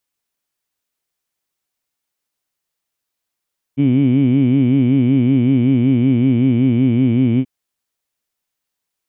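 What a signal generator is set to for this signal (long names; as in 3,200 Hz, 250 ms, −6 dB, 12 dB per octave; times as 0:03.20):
vowel by formant synthesis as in heed, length 3.68 s, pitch 133 Hz, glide −1.5 semitones, vibrato depth 1.35 semitones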